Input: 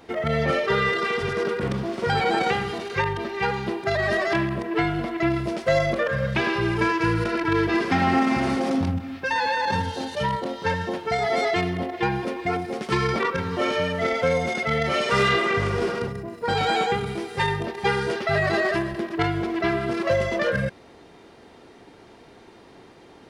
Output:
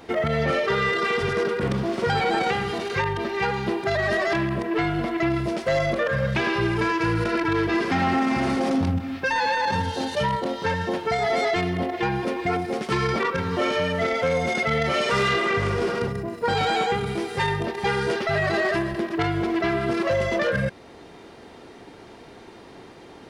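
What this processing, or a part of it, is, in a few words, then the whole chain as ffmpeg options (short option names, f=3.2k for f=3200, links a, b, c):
soft clipper into limiter: -af "asoftclip=type=tanh:threshold=-14dB,alimiter=limit=-19.5dB:level=0:latency=1:release=401,volume=4dB"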